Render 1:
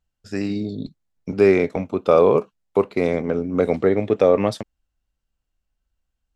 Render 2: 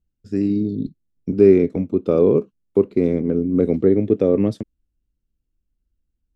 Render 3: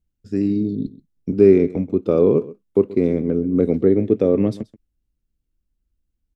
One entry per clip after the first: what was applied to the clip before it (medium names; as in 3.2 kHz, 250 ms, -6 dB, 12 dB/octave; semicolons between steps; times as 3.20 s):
resonant low shelf 510 Hz +13.5 dB, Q 1.5; trim -10.5 dB
delay 131 ms -18.5 dB